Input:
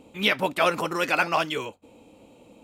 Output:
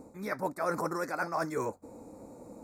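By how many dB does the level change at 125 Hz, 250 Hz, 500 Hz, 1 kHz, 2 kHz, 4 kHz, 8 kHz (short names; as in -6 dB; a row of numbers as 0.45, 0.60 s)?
-5.0, -5.5, -6.5, -8.0, -13.0, -24.5, -6.5 dB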